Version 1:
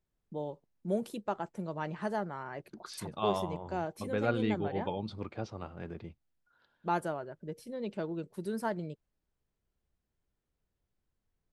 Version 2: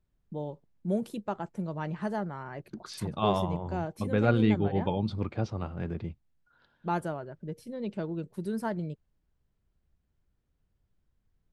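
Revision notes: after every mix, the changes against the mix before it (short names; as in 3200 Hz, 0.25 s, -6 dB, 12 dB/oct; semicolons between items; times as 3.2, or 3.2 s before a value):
second voice +4.0 dB; master: add tone controls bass +7 dB, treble -1 dB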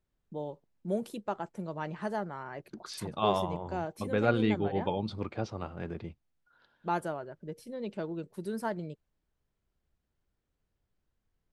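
master: add tone controls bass -7 dB, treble +1 dB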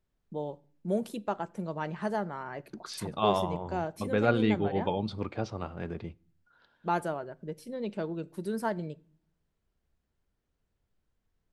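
reverb: on, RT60 0.50 s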